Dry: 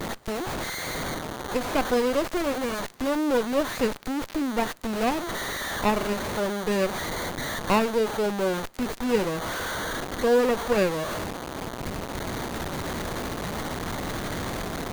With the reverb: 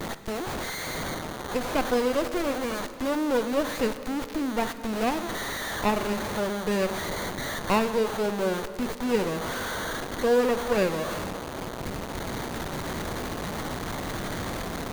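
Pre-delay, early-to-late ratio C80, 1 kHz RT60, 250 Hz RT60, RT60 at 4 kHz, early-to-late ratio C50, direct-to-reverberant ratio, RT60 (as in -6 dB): 32 ms, 12.0 dB, 2.8 s, 3.4 s, 2.0 s, 11.5 dB, 11.0 dB, 2.9 s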